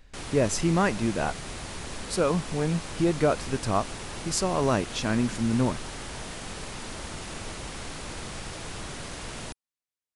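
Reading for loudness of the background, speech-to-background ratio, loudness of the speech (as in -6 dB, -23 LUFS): -37.5 LUFS, 10.5 dB, -27.0 LUFS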